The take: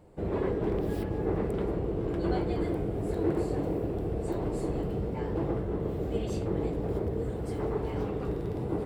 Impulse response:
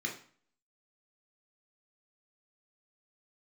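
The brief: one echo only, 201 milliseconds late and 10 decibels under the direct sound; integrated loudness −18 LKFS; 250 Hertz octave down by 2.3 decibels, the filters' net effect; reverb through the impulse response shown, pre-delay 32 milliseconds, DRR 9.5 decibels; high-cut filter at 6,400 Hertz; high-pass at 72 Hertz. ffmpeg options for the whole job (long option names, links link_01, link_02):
-filter_complex "[0:a]highpass=72,lowpass=6400,equalizer=frequency=250:width_type=o:gain=-3.5,aecho=1:1:201:0.316,asplit=2[link_01][link_02];[1:a]atrim=start_sample=2205,adelay=32[link_03];[link_02][link_03]afir=irnorm=-1:irlink=0,volume=-13dB[link_04];[link_01][link_04]amix=inputs=2:normalize=0,volume=14.5dB"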